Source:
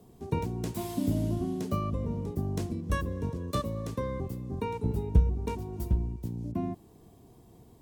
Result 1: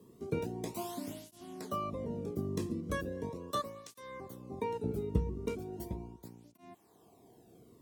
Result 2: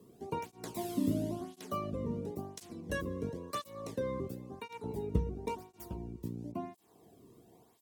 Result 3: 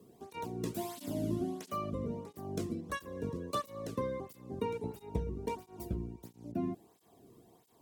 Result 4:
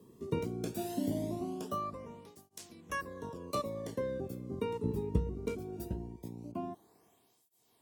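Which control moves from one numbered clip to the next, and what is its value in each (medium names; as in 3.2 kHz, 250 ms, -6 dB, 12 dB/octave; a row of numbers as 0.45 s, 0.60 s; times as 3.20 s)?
cancelling through-zero flanger, nulls at: 0.38 Hz, 0.96 Hz, 1.5 Hz, 0.2 Hz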